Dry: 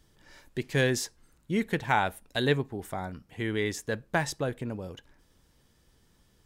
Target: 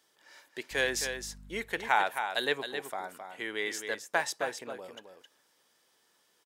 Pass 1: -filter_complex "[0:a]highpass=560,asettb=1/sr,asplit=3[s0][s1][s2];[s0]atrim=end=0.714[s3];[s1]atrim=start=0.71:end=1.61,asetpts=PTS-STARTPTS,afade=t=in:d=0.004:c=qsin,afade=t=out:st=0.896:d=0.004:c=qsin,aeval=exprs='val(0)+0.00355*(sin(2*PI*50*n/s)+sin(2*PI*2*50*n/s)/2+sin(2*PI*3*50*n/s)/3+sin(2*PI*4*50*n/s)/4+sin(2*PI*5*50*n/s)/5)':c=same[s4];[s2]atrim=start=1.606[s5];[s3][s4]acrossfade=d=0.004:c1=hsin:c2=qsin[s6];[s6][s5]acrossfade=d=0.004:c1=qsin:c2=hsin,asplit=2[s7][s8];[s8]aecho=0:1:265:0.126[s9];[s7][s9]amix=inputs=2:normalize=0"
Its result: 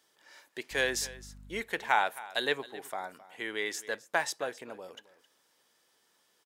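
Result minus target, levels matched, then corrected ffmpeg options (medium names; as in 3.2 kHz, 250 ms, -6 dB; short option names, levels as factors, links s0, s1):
echo-to-direct -10.5 dB
-filter_complex "[0:a]highpass=560,asettb=1/sr,asplit=3[s0][s1][s2];[s0]atrim=end=0.714[s3];[s1]atrim=start=0.71:end=1.61,asetpts=PTS-STARTPTS,afade=t=in:d=0.004:c=qsin,afade=t=out:st=0.896:d=0.004:c=qsin,aeval=exprs='val(0)+0.00355*(sin(2*PI*50*n/s)+sin(2*PI*2*50*n/s)/2+sin(2*PI*3*50*n/s)/3+sin(2*PI*4*50*n/s)/4+sin(2*PI*5*50*n/s)/5)':c=same[s4];[s2]atrim=start=1.606[s5];[s3][s4]acrossfade=d=0.004:c1=hsin:c2=qsin[s6];[s6][s5]acrossfade=d=0.004:c1=qsin:c2=hsin,asplit=2[s7][s8];[s8]aecho=0:1:265:0.422[s9];[s7][s9]amix=inputs=2:normalize=0"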